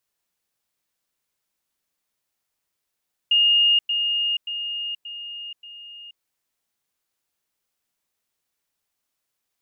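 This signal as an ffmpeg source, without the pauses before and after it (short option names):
-f lavfi -i "aevalsrc='pow(10,(-14-6*floor(t/0.58))/20)*sin(2*PI*2840*t)*clip(min(mod(t,0.58),0.48-mod(t,0.58))/0.005,0,1)':d=2.9:s=44100"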